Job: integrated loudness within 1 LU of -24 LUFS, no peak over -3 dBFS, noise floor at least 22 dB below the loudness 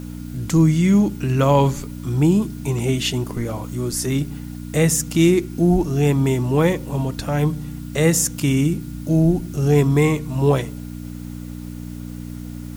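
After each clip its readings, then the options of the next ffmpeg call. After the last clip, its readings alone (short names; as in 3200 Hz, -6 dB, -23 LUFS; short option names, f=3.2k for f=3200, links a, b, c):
hum 60 Hz; harmonics up to 300 Hz; hum level -30 dBFS; loudness -19.5 LUFS; peak -4.0 dBFS; loudness target -24.0 LUFS
-> -af "bandreject=f=60:t=h:w=4,bandreject=f=120:t=h:w=4,bandreject=f=180:t=h:w=4,bandreject=f=240:t=h:w=4,bandreject=f=300:t=h:w=4"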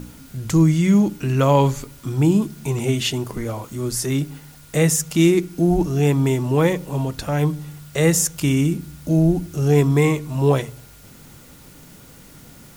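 hum none; loudness -19.5 LUFS; peak -4.5 dBFS; loudness target -24.0 LUFS
-> -af "volume=-4.5dB"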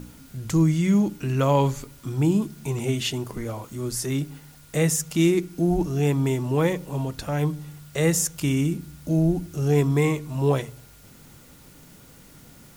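loudness -24.0 LUFS; peak -9.0 dBFS; noise floor -50 dBFS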